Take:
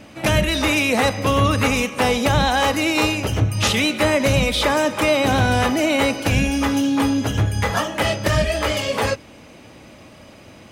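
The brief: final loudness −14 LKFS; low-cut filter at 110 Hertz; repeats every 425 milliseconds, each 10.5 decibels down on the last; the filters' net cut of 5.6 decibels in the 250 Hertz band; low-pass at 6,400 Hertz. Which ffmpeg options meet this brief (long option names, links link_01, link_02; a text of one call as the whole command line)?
ffmpeg -i in.wav -af "highpass=110,lowpass=6400,equalizer=frequency=250:width_type=o:gain=-6.5,aecho=1:1:425|850|1275:0.299|0.0896|0.0269,volume=6dB" out.wav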